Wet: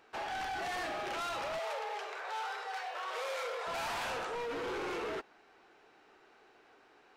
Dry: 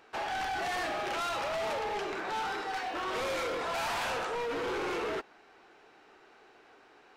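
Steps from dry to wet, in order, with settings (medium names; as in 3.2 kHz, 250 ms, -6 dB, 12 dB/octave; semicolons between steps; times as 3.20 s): 1.59–3.67 s: elliptic high-pass 460 Hz, stop band 50 dB; trim -4 dB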